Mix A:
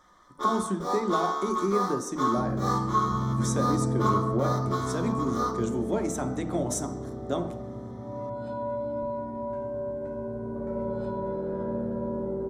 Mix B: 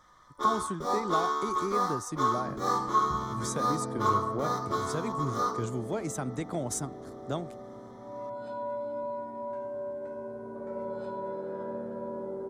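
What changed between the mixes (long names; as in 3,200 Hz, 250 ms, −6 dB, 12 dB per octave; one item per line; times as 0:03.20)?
speech: send off
second sound: add high-pass filter 610 Hz 6 dB per octave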